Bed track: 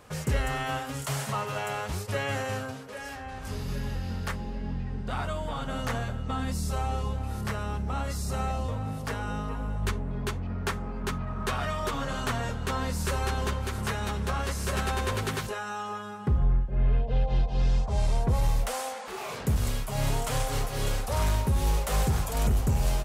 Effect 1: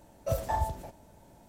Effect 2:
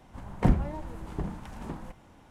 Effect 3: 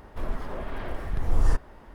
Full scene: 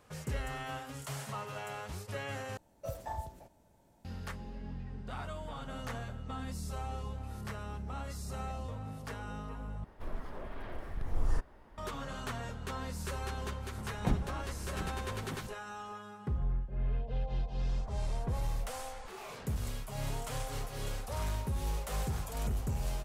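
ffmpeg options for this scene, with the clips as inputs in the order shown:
-filter_complex "[3:a]asplit=2[s0][s1];[0:a]volume=0.335[s2];[s1]acompressor=threshold=0.0355:ratio=6:attack=3.2:release=140:knee=1:detection=peak[s3];[s2]asplit=3[s4][s5][s6];[s4]atrim=end=2.574[s7];[1:a]atrim=end=1.48,asetpts=PTS-STARTPTS,volume=0.316[s8];[s5]atrim=start=4.046:end=9.844[s9];[s0]atrim=end=1.94,asetpts=PTS-STARTPTS,volume=0.355[s10];[s6]atrim=start=11.776[s11];[2:a]atrim=end=2.3,asetpts=PTS-STARTPTS,volume=0.376,afade=t=in:d=0.004:c=hsin,afade=t=out:st=2.296:d=0.004:c=hsin,adelay=13620[s12];[s3]atrim=end=1.94,asetpts=PTS-STARTPTS,volume=0.15,afade=t=in:d=0.004:c=hsin,afade=t=out:st=1.936:d=0.004:c=hsin,adelay=17520[s13];[s7][s8]acrossfade=d=0.004:c1=hsin:c2=hsin[s14];[s14][s9]acrossfade=d=0.004:c1=hsin:c2=hsin[s15];[s15][s10]acrossfade=d=0.004:c1=hsin:c2=hsin[s16];[s16][s11]acrossfade=d=0.004:c1=hsin:c2=hsin[s17];[s17][s12][s13]amix=inputs=3:normalize=0"

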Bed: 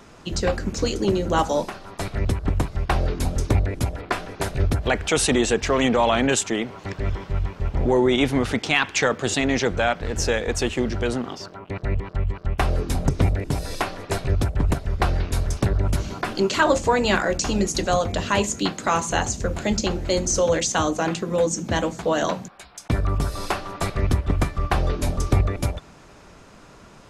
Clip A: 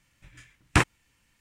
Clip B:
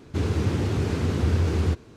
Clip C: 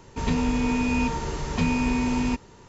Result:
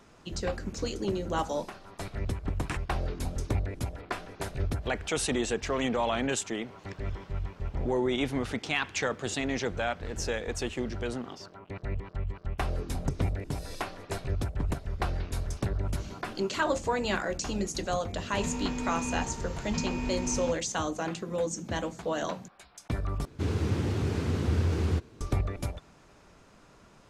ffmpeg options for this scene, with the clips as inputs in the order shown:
-filter_complex "[2:a]asplit=2[s0][s1];[0:a]volume=0.335[s2];[s0]acompressor=threshold=0.00891:ratio=6:attack=3.2:release=140:knee=1:detection=peak[s3];[s2]asplit=2[s4][s5];[s4]atrim=end=23.254[s6];[s1]atrim=end=1.96,asetpts=PTS-STARTPTS,volume=0.596[s7];[s5]atrim=start=25.206[s8];[1:a]atrim=end=1.4,asetpts=PTS-STARTPTS,volume=0.188,afade=t=in:d=0.004:c=hsin,afade=t=out:st=1.396:d=0.004:c=hsin,adelay=1940[s9];[s3]atrim=end=1.96,asetpts=PTS-STARTPTS,volume=0.282,afade=t=in:d=0.004:c=hsin,afade=t=out:st=1.956:d=0.004:c=hsin,adelay=8610[s10];[3:a]atrim=end=2.68,asetpts=PTS-STARTPTS,volume=0.316,afade=t=in:d=0.004:c=hsin,afade=t=out:st=2.676:d=0.004:c=hsin,adelay=18160[s11];[s6][s7]acrossfade=d=0.004:c1=hsin:c2=hsin[s12];[s12][s8]acrossfade=d=0.004:c1=hsin:c2=hsin[s13];[s13][s9][s10][s11]amix=inputs=4:normalize=0"

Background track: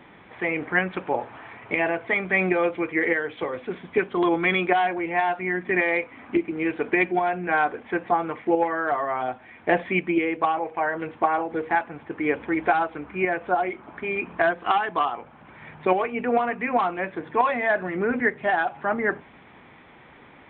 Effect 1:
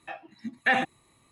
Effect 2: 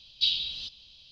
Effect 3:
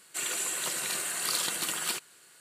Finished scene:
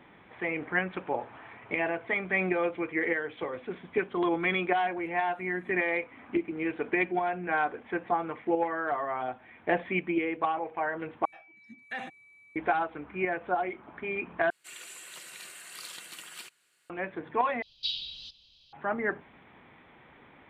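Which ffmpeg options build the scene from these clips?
-filter_complex "[1:a]asplit=2[s0][s1];[0:a]volume=0.501[s2];[s0]acompressor=threshold=0.002:ratio=6:attack=3.2:release=140:knee=1:detection=peak[s3];[s1]aeval=exprs='val(0)+0.01*sin(2*PI*2300*n/s)':c=same[s4];[3:a]equalizer=f=2400:w=0.96:g=7.5[s5];[s2]asplit=4[s6][s7][s8][s9];[s6]atrim=end=11.254[s10];[s4]atrim=end=1.31,asetpts=PTS-STARTPTS,volume=0.188[s11];[s7]atrim=start=12.556:end=14.504[s12];[s5]atrim=end=2.4,asetpts=PTS-STARTPTS,volume=0.158[s13];[s8]atrim=start=16.896:end=17.624[s14];[2:a]atrim=end=1.11,asetpts=PTS-STARTPTS,volume=0.447[s15];[s9]atrim=start=18.726[s16];[s3]atrim=end=1.31,asetpts=PTS-STARTPTS,volume=0.224,afade=t=in:d=0.004:c=hsin,afade=t=out:st=1.306:d=0.004:c=hsin,adelay=194481S[s17];[s10][s11]acrossfade=d=0.004:c1=hsin:c2=hsin[s18];[s18][s12]acrossfade=d=0.004:c1=hsin:c2=hsin[s19];[s19][s13]acrossfade=d=0.004:c1=hsin:c2=hsin[s20];[s20][s14]acrossfade=d=0.004:c1=hsin:c2=hsin[s21];[s21][s15]acrossfade=d=0.004:c1=hsin:c2=hsin[s22];[s22][s16]acrossfade=d=0.004:c1=hsin:c2=hsin[s23];[s23][s17]amix=inputs=2:normalize=0"

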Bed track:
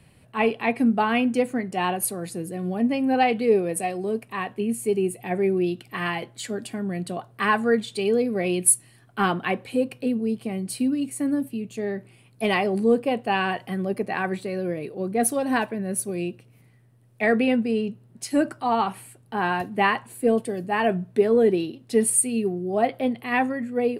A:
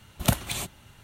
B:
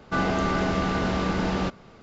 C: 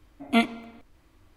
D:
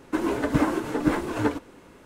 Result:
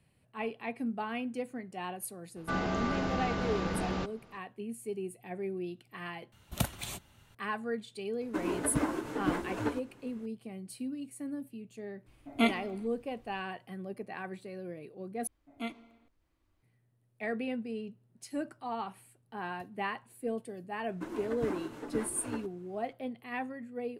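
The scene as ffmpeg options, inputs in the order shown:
-filter_complex "[4:a]asplit=2[s0][s1];[3:a]asplit=2[s2][s3];[0:a]volume=0.188,asplit=3[s4][s5][s6];[s4]atrim=end=6.324[s7];[1:a]atrim=end=1.03,asetpts=PTS-STARTPTS,volume=0.376[s8];[s5]atrim=start=7.346:end=15.274[s9];[s3]atrim=end=1.36,asetpts=PTS-STARTPTS,volume=0.141[s10];[s6]atrim=start=16.626[s11];[2:a]atrim=end=2.02,asetpts=PTS-STARTPTS,volume=0.398,afade=t=in:d=0.004:c=hsin,afade=t=out:st=2.016:d=0.004:c=hsin,adelay=2360[s12];[s0]atrim=end=2.05,asetpts=PTS-STARTPTS,volume=0.376,afade=t=in:d=0.004:c=hsin,afade=t=out:st=2.046:d=0.004:c=hsin,adelay=8210[s13];[s2]atrim=end=1.36,asetpts=PTS-STARTPTS,volume=0.562,afade=t=in:d=0.004:c=hsin,afade=t=out:st=1.356:d=0.004:c=hsin,adelay=12060[s14];[s1]atrim=end=2.05,asetpts=PTS-STARTPTS,volume=0.178,afade=t=in:d=0.004:c=hsin,afade=t=out:st=2.046:d=0.004:c=hsin,adelay=20880[s15];[s7][s8]acrossfade=d=0.004:c1=hsin:c2=hsin[s16];[s16][s9]acrossfade=d=0.004:c1=hsin:c2=hsin[s17];[s17][s10]acrossfade=d=0.004:c1=hsin:c2=hsin[s18];[s18][s11]acrossfade=d=0.004:c1=hsin:c2=hsin[s19];[s19][s12][s13][s14][s15]amix=inputs=5:normalize=0"

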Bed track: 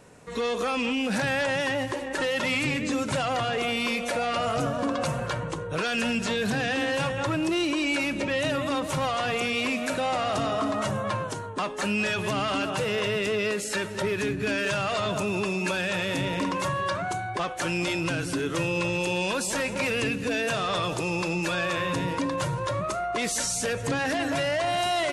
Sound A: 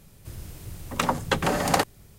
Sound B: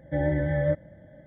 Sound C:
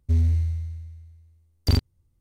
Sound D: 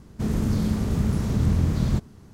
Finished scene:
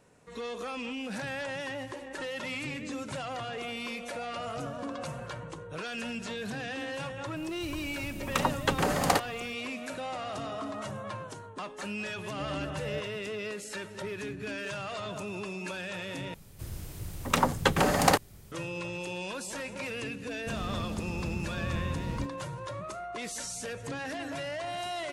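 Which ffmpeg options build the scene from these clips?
-filter_complex "[1:a]asplit=2[s0][s1];[0:a]volume=0.316,asplit=2[s2][s3];[s2]atrim=end=16.344[s4];[s1]atrim=end=2.18,asetpts=PTS-STARTPTS,volume=0.944[s5];[s3]atrim=start=18.516[s6];[s0]atrim=end=2.18,asetpts=PTS-STARTPTS,volume=0.668,afade=t=in:d=0.004:c=hsin,afade=t=out:st=2.176:d=0.004:c=hsin,adelay=7360[s7];[2:a]atrim=end=1.26,asetpts=PTS-STARTPTS,volume=0.237,afade=t=in:d=0.004:c=hsin,afade=t=out:st=1.256:d=0.004:c=hsin,adelay=12260[s8];[4:a]atrim=end=2.33,asetpts=PTS-STARTPTS,volume=0.237,afade=t=in:d=0.004:c=hsin,afade=t=out:st=2.326:d=0.004:c=hsin,adelay=20270[s9];[s4][s5]acrossfade=d=0.004:c1=hsin:c2=hsin[s10];[s10][s6]acrossfade=d=0.004:c1=hsin:c2=hsin[s11];[s11][s7][s8][s9]amix=inputs=4:normalize=0"

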